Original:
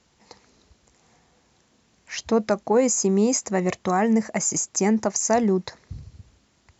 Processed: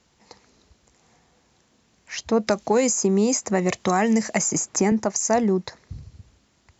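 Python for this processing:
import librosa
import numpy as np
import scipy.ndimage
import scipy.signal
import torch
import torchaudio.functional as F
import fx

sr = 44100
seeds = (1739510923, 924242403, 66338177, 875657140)

y = fx.band_squash(x, sr, depth_pct=70, at=(2.47, 4.92))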